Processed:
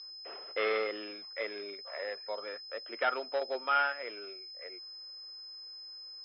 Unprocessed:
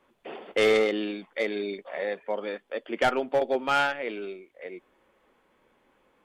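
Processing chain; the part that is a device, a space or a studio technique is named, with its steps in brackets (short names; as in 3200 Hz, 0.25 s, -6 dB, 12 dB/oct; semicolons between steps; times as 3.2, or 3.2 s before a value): toy sound module (decimation joined by straight lines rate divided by 4×; pulse-width modulation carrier 5100 Hz; speaker cabinet 620–4300 Hz, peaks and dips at 810 Hz -6 dB, 1300 Hz +4 dB, 3300 Hz +5 dB); gain -3.5 dB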